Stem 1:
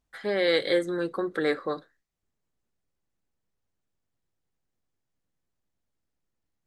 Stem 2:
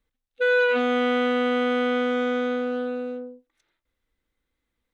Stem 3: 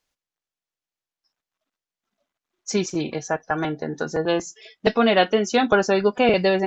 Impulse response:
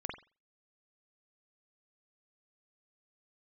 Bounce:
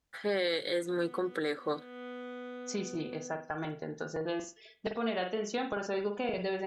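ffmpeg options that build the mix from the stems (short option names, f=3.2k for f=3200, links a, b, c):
-filter_complex "[0:a]highpass=43,adynamicequalizer=threshold=0.00794:dfrequency=3500:dqfactor=0.7:tfrequency=3500:tqfactor=0.7:attack=5:release=100:ratio=0.375:range=3:mode=boostabove:tftype=highshelf,volume=-1.5dB,asplit=2[a][b];[1:a]acompressor=threshold=-30dB:ratio=5,adelay=100,volume=-10dB[c];[2:a]volume=-13dB,asplit=2[d][e];[e]volume=-6dB[f];[b]apad=whole_len=222017[g];[c][g]sidechaincompress=threshold=-38dB:ratio=8:attack=7.9:release=364[h];[h][d]amix=inputs=2:normalize=0,acompressor=threshold=-35dB:ratio=6,volume=0dB[i];[3:a]atrim=start_sample=2205[j];[f][j]afir=irnorm=-1:irlink=0[k];[a][i][k]amix=inputs=3:normalize=0,alimiter=limit=-22dB:level=0:latency=1:release=249"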